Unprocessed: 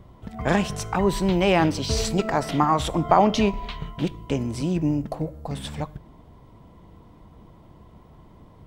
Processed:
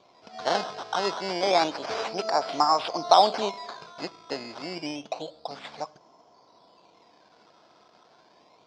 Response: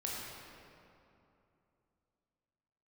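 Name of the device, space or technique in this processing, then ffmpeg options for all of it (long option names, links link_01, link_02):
circuit-bent sampling toy: -af "acrusher=samples=13:mix=1:aa=0.000001:lfo=1:lforange=13:lforate=0.29,highpass=530,equalizer=frequency=710:width_type=q:width=4:gain=5,equalizer=frequency=1900:width_type=q:width=4:gain=-7,equalizer=frequency=2800:width_type=q:width=4:gain=-4,equalizer=frequency=4900:width_type=q:width=4:gain=8,lowpass=frequency=5400:width=0.5412,lowpass=frequency=5400:width=1.3066,volume=-1dB"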